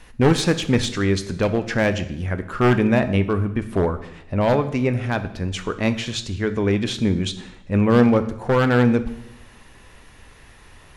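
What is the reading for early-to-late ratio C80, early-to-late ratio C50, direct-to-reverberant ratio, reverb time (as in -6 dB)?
16.0 dB, 13.5 dB, 10.0 dB, 0.80 s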